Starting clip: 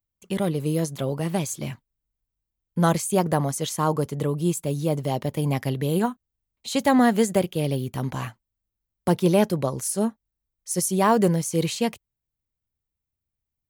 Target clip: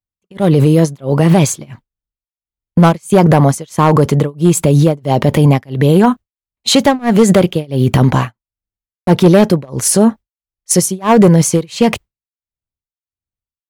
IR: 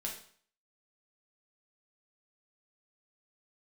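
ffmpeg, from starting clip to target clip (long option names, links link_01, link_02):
-filter_complex "[0:a]lowpass=frequency=3100:poles=1,agate=range=-33dB:threshold=-34dB:ratio=3:detection=peak,asplit=2[link_01][link_02];[link_02]acompressor=threshold=-31dB:ratio=6,volume=1dB[link_03];[link_01][link_03]amix=inputs=2:normalize=0,asoftclip=type=hard:threshold=-13dB,tremolo=f=1.5:d=0.99,alimiter=level_in=23.5dB:limit=-1dB:release=50:level=0:latency=1,volume=-1dB"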